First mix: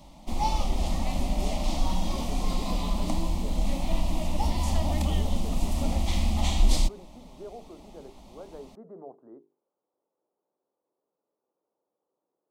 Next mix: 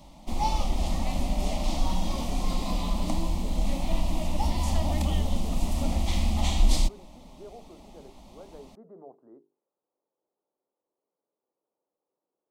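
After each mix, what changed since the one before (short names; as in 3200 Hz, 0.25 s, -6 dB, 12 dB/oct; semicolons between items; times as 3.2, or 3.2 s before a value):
speech -3.5 dB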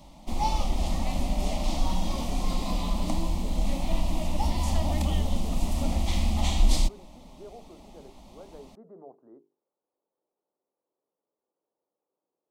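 none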